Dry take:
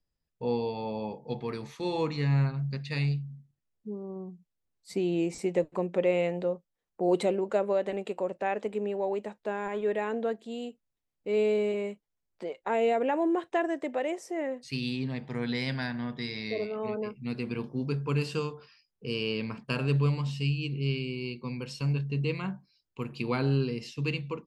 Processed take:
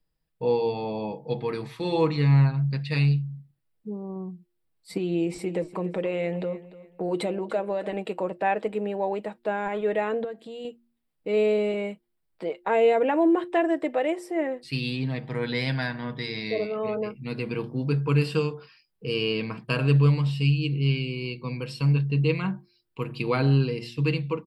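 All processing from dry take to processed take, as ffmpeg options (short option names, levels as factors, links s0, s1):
-filter_complex "[0:a]asettb=1/sr,asplit=3[s0][s1][s2];[s0]atrim=end=4.974[s3];[s1]atrim=start=4.97:end=7.96,asetpts=PTS-STARTPTS,afade=t=in:d=0.004:c=qsin,afade=t=out:st=2.986:d=0.004:c=qsin,acompressor=threshold=0.0282:ratio=2:attack=3.2:release=140:knee=1:detection=peak,aecho=1:1:295|590|885:0.141|0.041|0.0119,atrim=end_sample=131859[s4];[s2]atrim=start=7.956[s5];[s3][s4]acrossfade=d=0.004:c1=hsin:c2=qsin[s6];[s6][s5]acrossfade=d=0.004:c1=qsin:c2=hsin,asettb=1/sr,asplit=3[s7][s8][s9];[s7]atrim=end=10.244[s10];[s8]atrim=start=10.24:end=10.65,asetpts=PTS-STARTPTS,afade=t=in:d=0.004:c=qsin,afade=t=out:st=0.406:d=0.004:c=qsin,acompressor=threshold=0.0126:ratio=4:attack=3.2:release=140:knee=1:detection=peak,bandreject=f=980:w=17[s11];[s9]atrim=start=10.646[s12];[s10][s11]acrossfade=d=0.004:c1=hsin:c2=qsin[s13];[s13][s12]acrossfade=d=0.004:c1=qsin:c2=hsin,equalizer=f=6400:t=o:w=0.33:g=-14.5,aecho=1:1:6.3:0.4,bandreject=f=117.6:t=h:w=4,bandreject=f=235.2:t=h:w=4,bandreject=f=352.8:t=h:w=4,volume=1.68"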